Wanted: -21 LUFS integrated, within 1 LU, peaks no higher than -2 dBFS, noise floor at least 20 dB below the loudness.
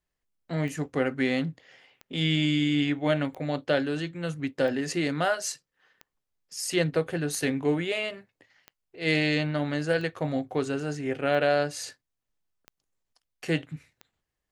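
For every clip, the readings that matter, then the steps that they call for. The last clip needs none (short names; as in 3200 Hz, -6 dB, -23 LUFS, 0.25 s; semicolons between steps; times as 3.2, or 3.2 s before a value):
clicks 11; loudness -28.0 LUFS; peak -10.5 dBFS; loudness target -21.0 LUFS
-> de-click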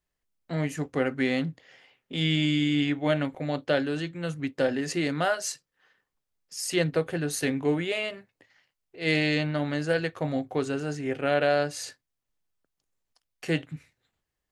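clicks 0; loudness -28.0 LUFS; peak -11.0 dBFS; loudness target -21.0 LUFS
-> gain +7 dB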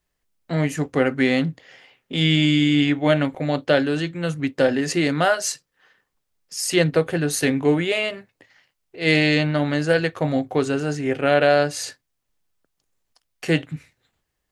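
loudness -21.0 LUFS; peak -4.0 dBFS; noise floor -77 dBFS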